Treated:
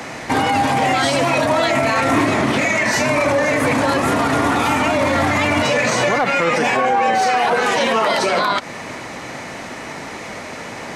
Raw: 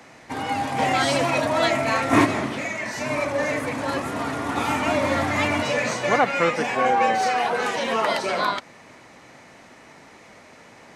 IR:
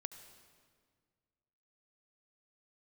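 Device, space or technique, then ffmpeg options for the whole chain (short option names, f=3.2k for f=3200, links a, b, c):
loud club master: -af "acompressor=threshold=-30dB:ratio=1.5,asoftclip=type=hard:threshold=-15dB,alimiter=level_in=24.5dB:limit=-1dB:release=50:level=0:latency=1,volume=-7.5dB"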